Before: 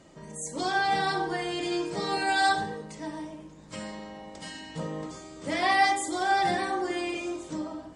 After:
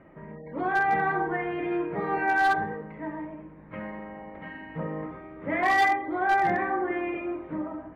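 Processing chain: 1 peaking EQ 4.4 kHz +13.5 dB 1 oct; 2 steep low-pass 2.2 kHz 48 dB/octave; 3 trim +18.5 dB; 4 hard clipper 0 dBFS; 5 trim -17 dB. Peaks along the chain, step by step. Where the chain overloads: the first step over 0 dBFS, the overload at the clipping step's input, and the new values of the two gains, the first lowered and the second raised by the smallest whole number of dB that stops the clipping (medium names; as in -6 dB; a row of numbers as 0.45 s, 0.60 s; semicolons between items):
-7.5 dBFS, -11.5 dBFS, +7.0 dBFS, 0.0 dBFS, -17.0 dBFS; step 3, 7.0 dB; step 3 +11.5 dB, step 5 -10 dB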